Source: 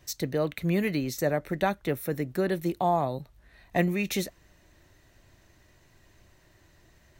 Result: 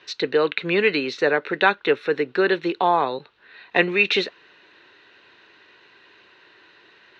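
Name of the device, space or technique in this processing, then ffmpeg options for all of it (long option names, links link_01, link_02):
phone earpiece: -af "highpass=380,equalizer=frequency=430:width_type=q:width=4:gain=8,equalizer=frequency=640:width_type=q:width=4:gain=-9,equalizer=frequency=1000:width_type=q:width=4:gain=4,equalizer=frequency=1500:width_type=q:width=4:gain=9,equalizer=frequency=2700:width_type=q:width=4:gain=9,equalizer=frequency=3900:width_type=q:width=4:gain=8,lowpass=frequency=4100:width=0.5412,lowpass=frequency=4100:width=1.3066,volume=8dB"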